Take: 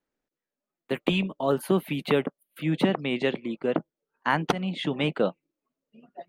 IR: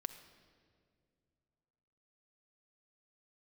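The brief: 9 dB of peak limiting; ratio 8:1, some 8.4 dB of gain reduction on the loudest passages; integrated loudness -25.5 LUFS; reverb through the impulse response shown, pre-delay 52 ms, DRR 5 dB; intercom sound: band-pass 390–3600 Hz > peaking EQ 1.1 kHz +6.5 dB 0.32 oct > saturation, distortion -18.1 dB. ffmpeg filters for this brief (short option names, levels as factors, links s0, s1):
-filter_complex "[0:a]acompressor=threshold=0.0355:ratio=8,alimiter=limit=0.0708:level=0:latency=1,asplit=2[s0][s1];[1:a]atrim=start_sample=2205,adelay=52[s2];[s1][s2]afir=irnorm=-1:irlink=0,volume=0.708[s3];[s0][s3]amix=inputs=2:normalize=0,highpass=390,lowpass=3600,equalizer=f=1100:t=o:w=0.32:g=6.5,asoftclip=threshold=0.0422,volume=5.01"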